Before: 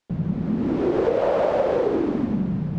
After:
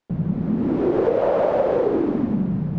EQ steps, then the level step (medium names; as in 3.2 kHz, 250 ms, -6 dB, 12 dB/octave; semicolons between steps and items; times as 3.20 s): peaking EQ 69 Hz -7 dB 0.39 oct; treble shelf 2.4 kHz -9 dB; +2.0 dB